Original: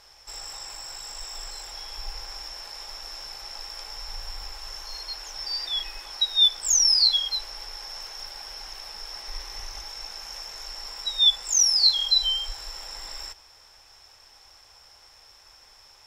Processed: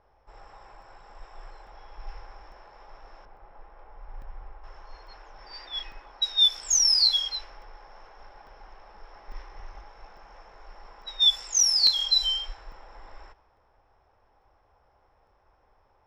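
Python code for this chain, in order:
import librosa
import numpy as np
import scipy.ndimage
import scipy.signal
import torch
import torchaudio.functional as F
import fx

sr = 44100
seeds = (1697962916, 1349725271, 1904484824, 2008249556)

y = fx.env_lowpass(x, sr, base_hz=840.0, full_db=-17.5)
y = fx.spacing_loss(y, sr, db_at_10k=31, at=(3.25, 4.64))
y = fx.buffer_crackle(y, sr, first_s=0.82, period_s=0.85, block=64, kind='zero')
y = F.gain(torch.from_numpy(y), -1.5).numpy()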